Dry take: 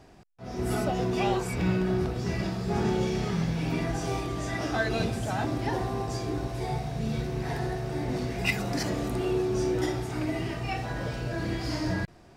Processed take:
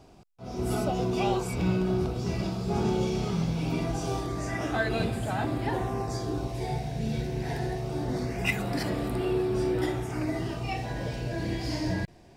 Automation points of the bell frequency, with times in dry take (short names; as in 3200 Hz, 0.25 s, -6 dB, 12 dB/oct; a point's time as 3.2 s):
bell -12.5 dB 0.34 oct
4.03 s 1800 Hz
4.81 s 5800 Hz
5.72 s 5800 Hz
6.67 s 1200 Hz
7.68 s 1200 Hz
8.69 s 6300 Hz
9.83 s 6300 Hz
10.83 s 1300 Hz